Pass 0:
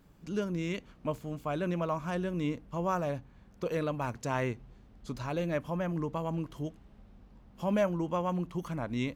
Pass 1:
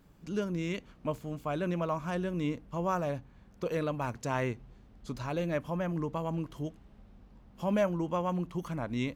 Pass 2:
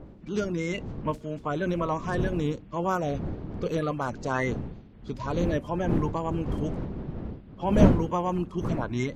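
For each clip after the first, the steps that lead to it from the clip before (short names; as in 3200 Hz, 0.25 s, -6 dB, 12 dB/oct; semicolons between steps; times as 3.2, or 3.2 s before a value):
nothing audible
bin magnitudes rounded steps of 30 dB; wind noise 230 Hz -36 dBFS; low-pass opened by the level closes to 2700 Hz, open at -26.5 dBFS; gain +4.5 dB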